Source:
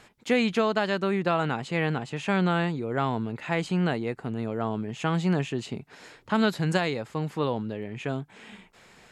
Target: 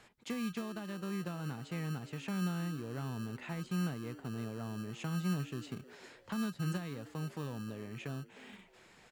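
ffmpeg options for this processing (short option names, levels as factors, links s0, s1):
-filter_complex "[0:a]acrossover=split=240[s0][s1];[s0]acrusher=samples=31:mix=1:aa=0.000001[s2];[s1]acompressor=threshold=0.0141:ratio=10[s3];[s2][s3]amix=inputs=2:normalize=0,asplit=4[s4][s5][s6][s7];[s5]adelay=311,afreqshift=120,volume=0.112[s8];[s6]adelay=622,afreqshift=240,volume=0.0417[s9];[s7]adelay=933,afreqshift=360,volume=0.0153[s10];[s4][s8][s9][s10]amix=inputs=4:normalize=0,volume=0.447"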